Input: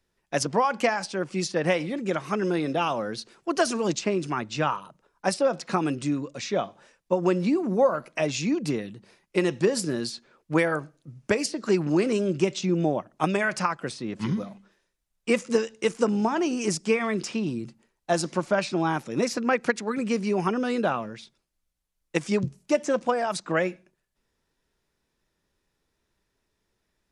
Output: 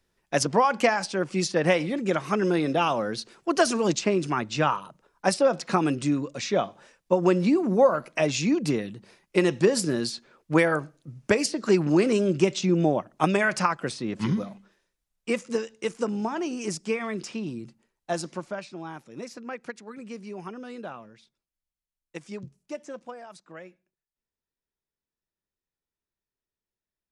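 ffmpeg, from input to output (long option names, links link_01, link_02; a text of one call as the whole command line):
ffmpeg -i in.wav -af "volume=2dB,afade=type=out:start_time=14.21:duration=1.22:silence=0.473151,afade=type=out:start_time=18.13:duration=0.54:silence=0.375837,afade=type=out:start_time=22.73:duration=0.7:silence=0.501187" out.wav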